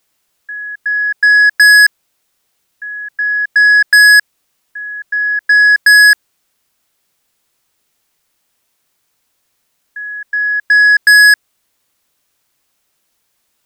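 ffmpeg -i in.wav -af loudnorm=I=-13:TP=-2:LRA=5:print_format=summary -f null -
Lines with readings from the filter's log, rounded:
Input Integrated:     -7.7 LUFS
Input True Peak:      -4.1 dBTP
Input LRA:             5.9 LU
Input Threshold:     -21.7 LUFS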